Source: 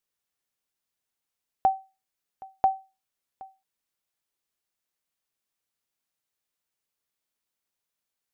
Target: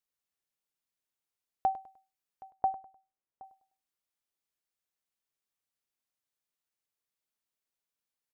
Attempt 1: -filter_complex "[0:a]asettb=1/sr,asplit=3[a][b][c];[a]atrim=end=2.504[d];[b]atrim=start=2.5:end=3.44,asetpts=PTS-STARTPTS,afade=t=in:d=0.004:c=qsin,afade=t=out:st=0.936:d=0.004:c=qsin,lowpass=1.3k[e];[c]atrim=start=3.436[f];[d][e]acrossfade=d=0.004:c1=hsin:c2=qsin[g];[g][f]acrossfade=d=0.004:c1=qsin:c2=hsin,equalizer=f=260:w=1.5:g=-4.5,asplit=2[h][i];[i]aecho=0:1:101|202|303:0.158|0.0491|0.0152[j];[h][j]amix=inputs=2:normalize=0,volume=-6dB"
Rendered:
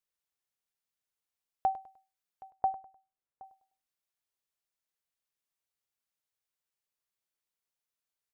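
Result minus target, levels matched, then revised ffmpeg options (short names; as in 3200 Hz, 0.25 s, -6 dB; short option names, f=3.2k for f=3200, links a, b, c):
250 Hz band -3.0 dB
-filter_complex "[0:a]asettb=1/sr,asplit=3[a][b][c];[a]atrim=end=2.504[d];[b]atrim=start=2.5:end=3.44,asetpts=PTS-STARTPTS,afade=t=in:d=0.004:c=qsin,afade=t=out:st=0.936:d=0.004:c=qsin,lowpass=1.3k[e];[c]atrim=start=3.436[f];[d][e]acrossfade=d=0.004:c1=hsin:c2=qsin[g];[g][f]acrossfade=d=0.004:c1=qsin:c2=hsin,asplit=2[h][i];[i]aecho=0:1:101|202|303:0.158|0.0491|0.0152[j];[h][j]amix=inputs=2:normalize=0,volume=-6dB"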